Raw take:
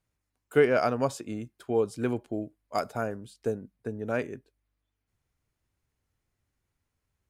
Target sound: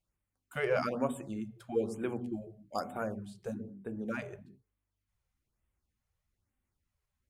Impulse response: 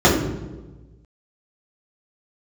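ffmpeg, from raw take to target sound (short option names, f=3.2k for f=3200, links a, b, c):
-filter_complex "[0:a]flanger=delay=1.5:depth=2.4:regen=59:speed=1.6:shape=sinusoidal,asplit=2[a][b];[1:a]atrim=start_sample=2205,atrim=end_sample=6174,asetrate=26901,aresample=44100[c];[b][c]afir=irnorm=-1:irlink=0,volume=-37.5dB[d];[a][d]amix=inputs=2:normalize=0,afftfilt=real='re*(1-between(b*sr/1024,240*pow(5400/240,0.5+0.5*sin(2*PI*1.1*pts/sr))/1.41,240*pow(5400/240,0.5+0.5*sin(2*PI*1.1*pts/sr))*1.41))':imag='im*(1-between(b*sr/1024,240*pow(5400/240,0.5+0.5*sin(2*PI*1.1*pts/sr))/1.41,240*pow(5400/240,0.5+0.5*sin(2*PI*1.1*pts/sr))*1.41))':win_size=1024:overlap=0.75,volume=-1dB"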